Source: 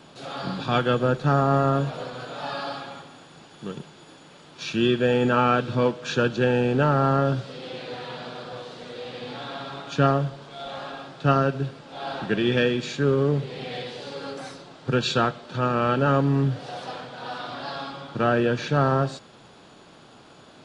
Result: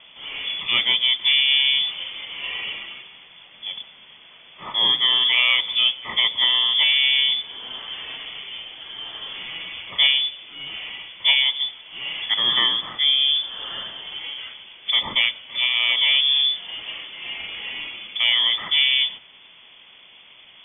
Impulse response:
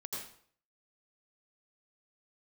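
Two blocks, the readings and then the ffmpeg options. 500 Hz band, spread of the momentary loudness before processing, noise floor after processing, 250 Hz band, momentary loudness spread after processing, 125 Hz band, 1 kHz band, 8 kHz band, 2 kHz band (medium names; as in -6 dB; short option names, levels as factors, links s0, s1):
-21.0 dB, 16 LU, -48 dBFS, -22.5 dB, 17 LU, under -25 dB, -10.0 dB, no reading, +7.5 dB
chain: -af "lowpass=f=3100:t=q:w=0.5098,lowpass=f=3100:t=q:w=0.6013,lowpass=f=3100:t=q:w=0.9,lowpass=f=3100:t=q:w=2.563,afreqshift=-3600,bandreject=f=50:t=h:w=6,bandreject=f=100:t=h:w=6,bandreject=f=150:t=h:w=6,volume=1.26"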